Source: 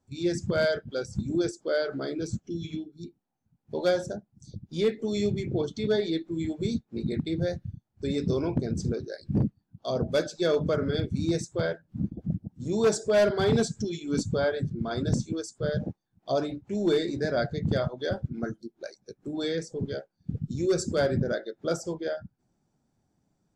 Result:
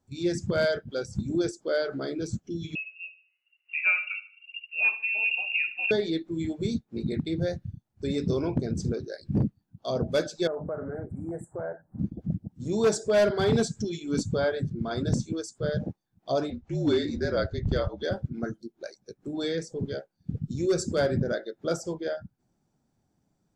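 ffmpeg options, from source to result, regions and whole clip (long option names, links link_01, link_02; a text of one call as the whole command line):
ffmpeg -i in.wav -filter_complex "[0:a]asettb=1/sr,asplit=3[link_01][link_02][link_03];[link_01]atrim=end=2.754[link_04];[link_02]atrim=start=2.75:end=5.91,asetpts=PTS-STARTPTS,afade=type=in:duration=0.004:curve=qsin,afade=type=out:start_time=3.156:duration=0.004:curve=qsin,aecho=1:1:75|150|225|300:0.178|0.0711|0.0285|0.0114,atrim=end_sample=139356,lowpass=frequency=2500:width_type=q:width=0.5098,lowpass=frequency=2500:width_type=q:width=0.6013,lowpass=frequency=2500:width_type=q:width=0.9,lowpass=frequency=2500:width_type=q:width=2.563,afreqshift=-2900[link_05];[link_03]atrim=start=5.906[link_06];[link_04][link_05]acrossfade=duration=0.004:curve1=hsin:curve2=qsin[link_07];[link_07][link_06]acrossfade=duration=0.004:curve1=qsin:curve2=hsin,asettb=1/sr,asplit=3[link_08][link_09][link_10];[link_08]atrim=end=10.474[link_11];[link_09]atrim=start=10.47:end=11.99,asetpts=PTS-STARTPTS,afade=type=in:duration=0.004:curve=qsin,afade=type=out:start_time=1.516:duration=0.004:curve=qsin,equalizer=frequency=760:width_type=o:width=0.92:gain=13,acompressor=threshold=-36dB:ratio=2.5:attack=3.2:release=140:knee=1:detection=peak,asuperstop=centerf=4000:order=12:qfactor=0.64[link_12];[link_10]atrim=start=11.986[link_13];[link_11][link_12]acrossfade=duration=0.004:curve1=hsin:curve2=qsin[link_14];[link_14][link_13]acrossfade=duration=0.004:curve1=qsin:curve2=hsin,asettb=1/sr,asplit=3[link_15][link_16][link_17];[link_15]atrim=end=16.504[link_18];[link_16]atrim=start=16.5:end=18.03,asetpts=PTS-STARTPTS,afade=type=in:duration=0.004:curve=qsin,afade=type=out:start_time=1.526:duration=0.004:curve=qsin,lowpass=frequency=6900:width=0.5412,lowpass=frequency=6900:width=1.3066,afreqshift=-51[link_19];[link_17]atrim=start=18.026[link_20];[link_18][link_19]acrossfade=duration=0.004:curve1=hsin:curve2=qsin[link_21];[link_21][link_20]acrossfade=duration=0.004:curve1=qsin:curve2=hsin" out.wav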